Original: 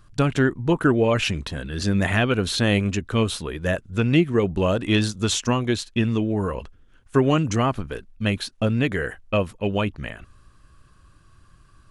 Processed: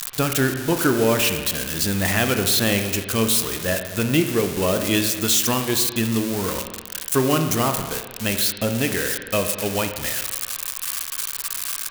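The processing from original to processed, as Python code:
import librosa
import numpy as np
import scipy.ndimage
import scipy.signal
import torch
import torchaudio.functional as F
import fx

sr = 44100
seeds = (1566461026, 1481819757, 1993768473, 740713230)

y = x + 0.5 * 10.0 ** (-13.5 / 20.0) * np.diff(np.sign(x), prepend=np.sign(x[:1]))
y = fx.low_shelf(y, sr, hz=140.0, db=-7.5)
y = fx.rev_spring(y, sr, rt60_s=1.5, pass_ms=(31, 44), chirp_ms=30, drr_db=6.0)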